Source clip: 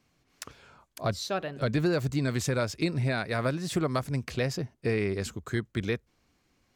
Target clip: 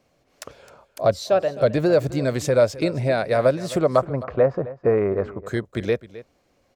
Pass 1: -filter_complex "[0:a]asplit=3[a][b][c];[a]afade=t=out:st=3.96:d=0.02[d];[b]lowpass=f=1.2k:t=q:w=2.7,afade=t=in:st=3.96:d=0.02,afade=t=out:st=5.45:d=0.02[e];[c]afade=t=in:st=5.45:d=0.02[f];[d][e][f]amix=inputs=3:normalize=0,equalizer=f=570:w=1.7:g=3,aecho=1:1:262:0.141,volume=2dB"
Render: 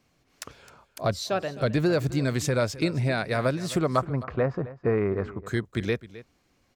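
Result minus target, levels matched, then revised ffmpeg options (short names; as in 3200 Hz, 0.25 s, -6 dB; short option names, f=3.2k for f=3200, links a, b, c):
500 Hz band -3.0 dB
-filter_complex "[0:a]asplit=3[a][b][c];[a]afade=t=out:st=3.96:d=0.02[d];[b]lowpass=f=1.2k:t=q:w=2.7,afade=t=in:st=3.96:d=0.02,afade=t=out:st=5.45:d=0.02[e];[c]afade=t=in:st=5.45:d=0.02[f];[d][e][f]amix=inputs=3:normalize=0,equalizer=f=570:w=1.7:g=14,aecho=1:1:262:0.141,volume=2dB"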